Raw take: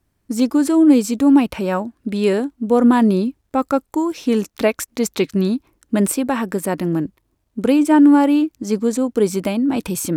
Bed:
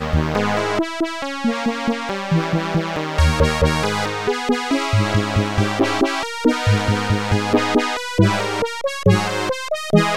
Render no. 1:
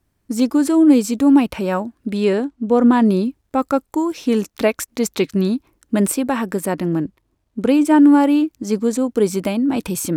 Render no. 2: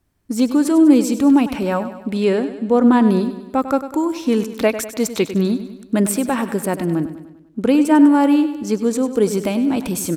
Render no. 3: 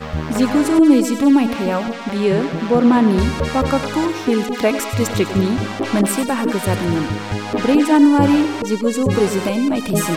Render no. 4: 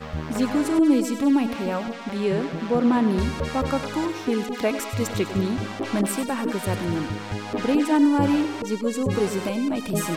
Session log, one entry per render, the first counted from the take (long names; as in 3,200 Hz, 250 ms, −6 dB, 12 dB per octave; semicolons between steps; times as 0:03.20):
0:02.23–0:03.06: high-frequency loss of the air 51 metres; 0:06.72–0:07.74: high-shelf EQ 9,200 Hz −8 dB
repeating echo 99 ms, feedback 53%, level −12 dB
mix in bed −5 dB
level −7 dB